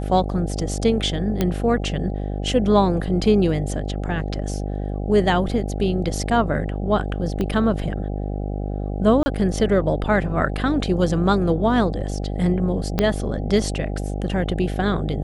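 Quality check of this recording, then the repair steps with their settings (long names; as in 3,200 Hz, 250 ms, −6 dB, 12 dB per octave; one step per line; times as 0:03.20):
mains buzz 50 Hz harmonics 16 −26 dBFS
0:01.41: click −7 dBFS
0:07.41: click −13 dBFS
0:09.23–0:09.26: drop-out 30 ms
0:12.99: click −6 dBFS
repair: click removal
hum removal 50 Hz, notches 16
repair the gap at 0:09.23, 30 ms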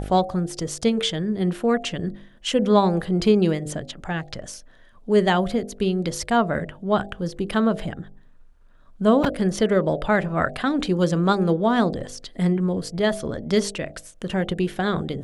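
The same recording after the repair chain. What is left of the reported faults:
0:07.41: click
0:12.99: click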